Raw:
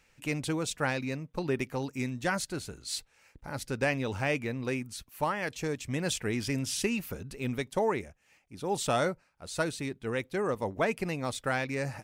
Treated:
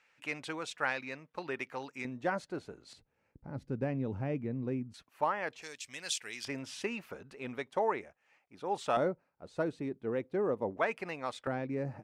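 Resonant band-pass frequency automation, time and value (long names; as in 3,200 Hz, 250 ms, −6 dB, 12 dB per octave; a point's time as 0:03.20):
resonant band-pass, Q 0.7
1,500 Hz
from 0:02.05 570 Hz
from 0:02.93 190 Hz
from 0:04.94 890 Hz
from 0:05.62 4,700 Hz
from 0:06.45 1,000 Hz
from 0:08.97 380 Hz
from 0:10.77 1,200 Hz
from 0:11.47 280 Hz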